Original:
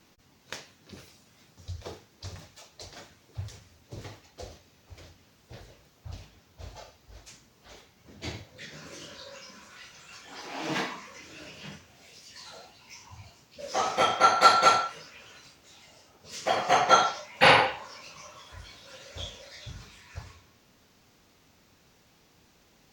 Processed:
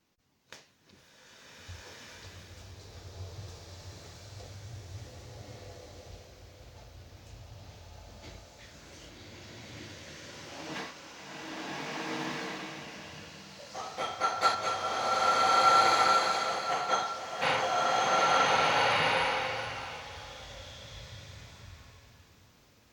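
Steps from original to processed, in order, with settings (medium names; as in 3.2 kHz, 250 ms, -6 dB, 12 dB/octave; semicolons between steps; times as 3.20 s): tremolo saw up 1.1 Hz, depth 50%; swelling reverb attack 1580 ms, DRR -8.5 dB; trim -8 dB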